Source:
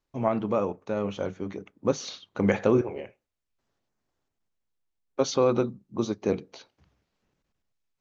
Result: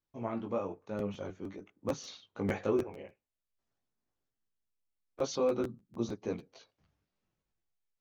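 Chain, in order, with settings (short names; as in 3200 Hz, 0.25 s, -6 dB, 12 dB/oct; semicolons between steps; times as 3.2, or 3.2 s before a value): chorus voices 2, 0.49 Hz, delay 19 ms, depth 1.9 ms; crackling interface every 0.15 s, samples 512, repeat, from 0.98; gain -6 dB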